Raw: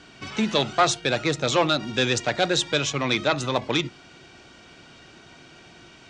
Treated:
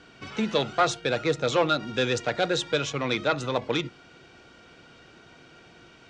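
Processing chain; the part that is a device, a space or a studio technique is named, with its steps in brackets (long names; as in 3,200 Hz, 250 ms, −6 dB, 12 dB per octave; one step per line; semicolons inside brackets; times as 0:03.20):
inside a helmet (high-shelf EQ 5,500 Hz −7 dB; hollow resonant body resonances 480/1,400 Hz, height 7 dB)
level −3.5 dB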